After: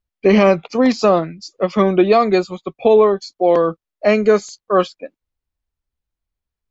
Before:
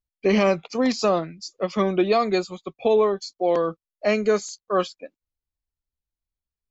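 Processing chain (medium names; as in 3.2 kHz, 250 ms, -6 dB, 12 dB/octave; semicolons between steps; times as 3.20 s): treble shelf 4.6 kHz -11 dB; trim +7.5 dB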